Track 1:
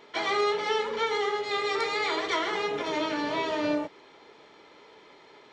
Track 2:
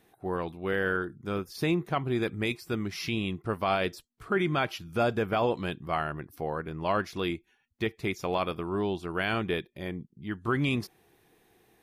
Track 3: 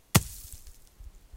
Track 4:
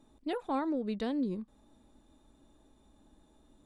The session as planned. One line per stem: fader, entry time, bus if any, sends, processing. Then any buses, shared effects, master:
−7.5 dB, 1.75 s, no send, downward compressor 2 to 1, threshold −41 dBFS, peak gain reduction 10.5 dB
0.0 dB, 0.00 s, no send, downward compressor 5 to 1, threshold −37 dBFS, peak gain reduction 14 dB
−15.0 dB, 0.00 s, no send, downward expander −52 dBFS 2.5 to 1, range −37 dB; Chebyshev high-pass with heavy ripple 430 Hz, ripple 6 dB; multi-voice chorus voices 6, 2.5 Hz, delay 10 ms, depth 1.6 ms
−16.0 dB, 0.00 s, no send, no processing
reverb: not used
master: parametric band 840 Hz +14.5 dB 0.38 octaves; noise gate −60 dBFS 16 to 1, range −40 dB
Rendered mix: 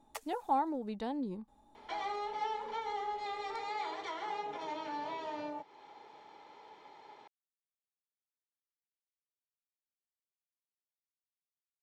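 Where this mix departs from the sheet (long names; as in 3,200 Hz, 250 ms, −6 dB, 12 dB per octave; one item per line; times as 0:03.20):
stem 2: muted
stem 4 −16.0 dB → −5.5 dB
master: missing noise gate −60 dBFS 16 to 1, range −40 dB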